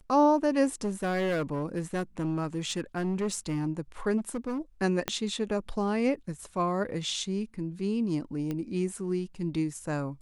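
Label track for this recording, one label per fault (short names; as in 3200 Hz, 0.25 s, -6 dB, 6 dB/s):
0.840000	3.680000	clipped -25 dBFS
4.170000	4.590000	clipped -28 dBFS
5.080000	5.080000	pop -12 dBFS
8.510000	8.510000	pop -21 dBFS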